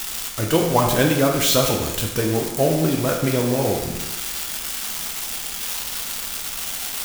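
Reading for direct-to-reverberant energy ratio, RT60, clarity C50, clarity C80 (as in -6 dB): -0.5 dB, 1.0 s, 4.0 dB, 6.5 dB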